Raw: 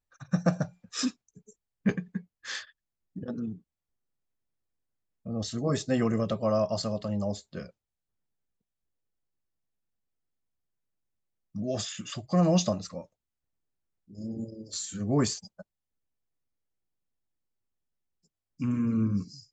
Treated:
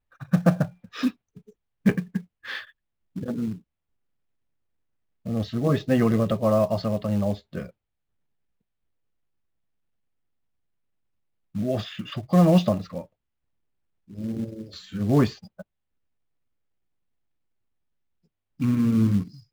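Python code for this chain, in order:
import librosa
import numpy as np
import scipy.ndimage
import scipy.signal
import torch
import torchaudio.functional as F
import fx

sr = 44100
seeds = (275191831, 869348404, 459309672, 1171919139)

p1 = scipy.signal.sosfilt(scipy.signal.butter(4, 3500.0, 'lowpass', fs=sr, output='sos'), x)
p2 = fx.low_shelf(p1, sr, hz=220.0, db=3.0)
p3 = fx.quant_float(p2, sr, bits=2)
y = p2 + (p3 * 10.0 ** (-3.0 / 20.0))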